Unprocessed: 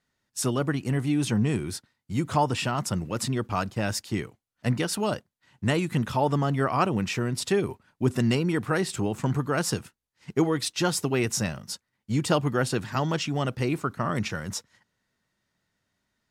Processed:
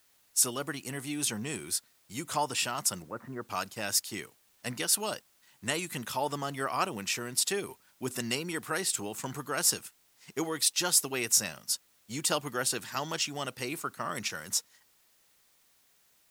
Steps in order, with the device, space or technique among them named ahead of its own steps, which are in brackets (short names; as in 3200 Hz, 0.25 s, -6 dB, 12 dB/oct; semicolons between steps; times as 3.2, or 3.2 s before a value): 3.02–3.48 steep low-pass 1700 Hz; turntable without a phono preamp (RIAA curve recording; white noise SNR 33 dB); gain -5.5 dB